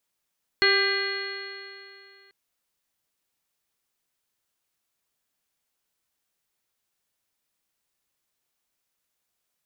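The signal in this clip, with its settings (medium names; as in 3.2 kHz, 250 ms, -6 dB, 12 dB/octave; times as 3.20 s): stretched partials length 1.69 s, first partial 391 Hz, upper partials -14/-7.5/0/2.5/-9/-10/-13/-18.5/1.5 dB, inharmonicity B 0.002, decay 2.63 s, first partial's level -23 dB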